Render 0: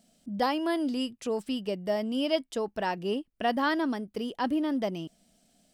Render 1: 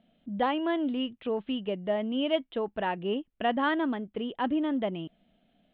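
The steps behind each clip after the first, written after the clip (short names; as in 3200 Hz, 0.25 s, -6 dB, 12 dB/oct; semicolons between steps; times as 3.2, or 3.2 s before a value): steep low-pass 3600 Hz 72 dB/oct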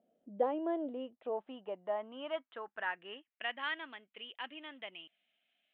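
bell 150 Hz -4 dB 1.3 oct; band-pass sweep 470 Hz -> 2500 Hz, 0.54–3.67; gain +1 dB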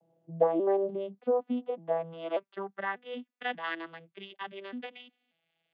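arpeggiated vocoder minor triad, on E3, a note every 0.59 s; gain +8 dB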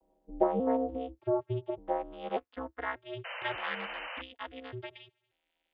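ring modulator 130 Hz; painted sound noise, 3.24–4.22, 470–3100 Hz -42 dBFS; gain +1 dB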